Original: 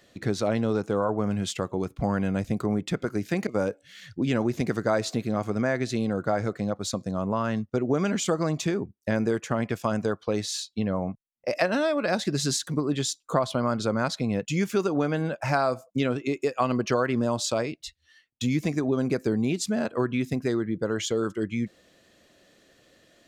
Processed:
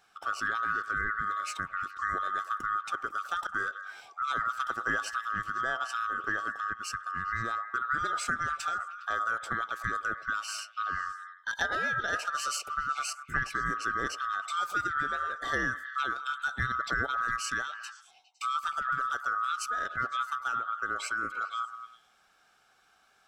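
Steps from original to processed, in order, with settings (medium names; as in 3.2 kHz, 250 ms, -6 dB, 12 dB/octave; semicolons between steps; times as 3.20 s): split-band scrambler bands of 1 kHz; repeats whose band climbs or falls 102 ms, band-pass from 790 Hz, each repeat 0.7 oct, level -8 dB; trim -6.5 dB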